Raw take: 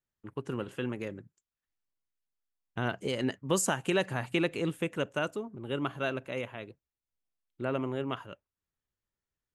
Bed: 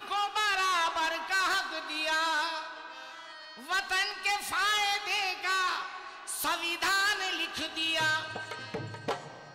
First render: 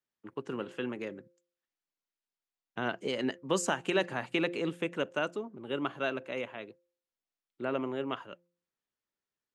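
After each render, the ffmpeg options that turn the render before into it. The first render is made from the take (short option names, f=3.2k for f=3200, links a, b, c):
-filter_complex "[0:a]acrossover=split=170 7300:gain=0.126 1 0.158[a][b][c];[a][b][c]amix=inputs=3:normalize=0,bandreject=f=173.9:t=h:w=4,bandreject=f=347.8:t=h:w=4,bandreject=f=521.7:t=h:w=4"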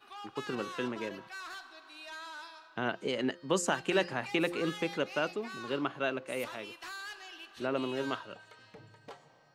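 -filter_complex "[1:a]volume=-16dB[a];[0:a][a]amix=inputs=2:normalize=0"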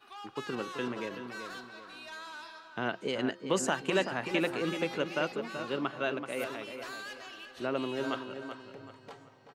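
-filter_complex "[0:a]asplit=2[a][b];[b]adelay=381,lowpass=f=2.9k:p=1,volume=-8dB,asplit=2[c][d];[d]adelay=381,lowpass=f=2.9k:p=1,volume=0.4,asplit=2[e][f];[f]adelay=381,lowpass=f=2.9k:p=1,volume=0.4,asplit=2[g][h];[h]adelay=381,lowpass=f=2.9k:p=1,volume=0.4,asplit=2[i][j];[j]adelay=381,lowpass=f=2.9k:p=1,volume=0.4[k];[a][c][e][g][i][k]amix=inputs=6:normalize=0"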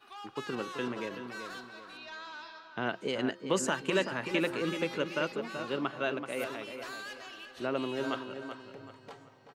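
-filter_complex "[0:a]asettb=1/sr,asplit=3[a][b][c];[a]atrim=end=1.974[d];[b]atrim=start=1.97:end=2.87,asetpts=PTS-STARTPTS,afade=t=in:d=0.004:c=qsin,afade=t=out:st=0.896:d=0.004:c=qsin,lowpass=f=5.8k:w=0.5412,lowpass=f=5.8k:w=1.3066[e];[c]atrim=start=2.866[f];[d][e]acrossfade=d=0.004:c1=hsin:c2=qsin[g];[g][f]acrossfade=d=0.004:c1=qsin:c2=hsin,asettb=1/sr,asplit=3[h][i][j];[h]atrim=end=3.574[k];[i]atrim=start=3.57:end=5.34,asetpts=PTS-STARTPTS,afade=t=in:d=0.004:c=qsin,afade=t=out:st=1.766:d=0.004:c=qsin,bandreject=f=740:w=5.7[l];[j]atrim=start=5.336[m];[k][l]acrossfade=d=0.004:c1=hsin:c2=qsin[n];[n][m]acrossfade=d=0.004:c1=qsin:c2=hsin"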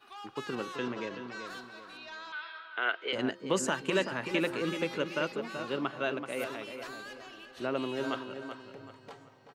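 -filter_complex "[0:a]asettb=1/sr,asplit=3[a][b][c];[a]atrim=end=0.764[d];[b]atrim=start=0.76:end=1.47,asetpts=PTS-STARTPTS,afade=t=in:d=0.004:c=qsin,afade=t=out:st=0.706:d=0.004:c=qsin,lowpass=f=7.1k:w=0.5412,lowpass=f=7.1k:w=1.3066[e];[c]atrim=start=1.466[f];[d][e]acrossfade=d=0.004:c1=hsin:c2=qsin[g];[g][f]acrossfade=d=0.004:c1=qsin:c2=hsin,asettb=1/sr,asplit=3[h][i][j];[h]atrim=end=2.324[k];[i]atrim=start=2.32:end=3.13,asetpts=PTS-STARTPTS,afade=t=in:d=0.004:c=qsin,afade=t=out:st=0.806:d=0.004:c=qsin,highpass=f=410:w=0.5412,highpass=f=410:w=1.3066,equalizer=f=580:t=q:w=4:g=-4,equalizer=f=890:t=q:w=4:g=-5,equalizer=f=1.4k:t=q:w=4:g=9,equalizer=f=2.1k:t=q:w=4:g=7,equalizer=f=3.2k:t=q:w=4:g=7,lowpass=f=4k:w=0.5412,lowpass=f=4k:w=1.3066[l];[j]atrim=start=3.126[m];[k][l]acrossfade=d=0.004:c1=hsin:c2=qsin[n];[n][m]acrossfade=d=0.004:c1=qsin:c2=hsin,asettb=1/sr,asplit=3[o][p][q];[o]atrim=end=6.874[r];[p]atrim=start=6.87:end=7.53,asetpts=PTS-STARTPTS,afade=t=in:d=0.004:c=qsin,afade=t=out:st=0.656:d=0.004:c=qsin,tiltshelf=f=680:g=4[s];[q]atrim=start=7.526[t];[r][s]acrossfade=d=0.004:c1=hsin:c2=qsin[u];[u][t]acrossfade=d=0.004:c1=qsin:c2=hsin"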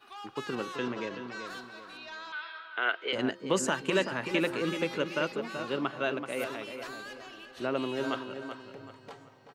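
-af "volume=1.5dB"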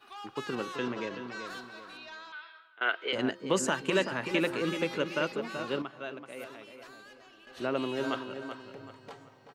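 -filter_complex "[0:a]asplit=4[a][b][c][d];[a]atrim=end=2.81,asetpts=PTS-STARTPTS,afade=t=out:st=1.88:d=0.93:silence=0.0668344[e];[b]atrim=start=2.81:end=5.822,asetpts=PTS-STARTPTS,afade=t=in:d=0.004:c=hsin:silence=0.0668344[f];[c]atrim=start=5.818:end=7.472,asetpts=PTS-STARTPTS,volume=-9dB[g];[d]atrim=start=7.468[h];[e][f]concat=n=2:v=0:a=1[i];[i][g]acrossfade=d=0.004:c1=hsin:c2=hsin[j];[j][h]acrossfade=d=0.004:c1=hsin:c2=hsin"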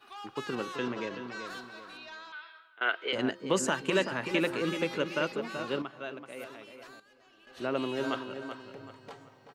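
-filter_complex "[0:a]asplit=2[a][b];[a]atrim=end=7,asetpts=PTS-STARTPTS,afade=t=out:st=6.996:d=0.004:c=hsin:silence=0.237137[c];[b]atrim=start=7,asetpts=PTS-STARTPTS,afade=t=in:d=0.76:silence=0.237137[d];[c][d]concat=n=2:v=0:a=1"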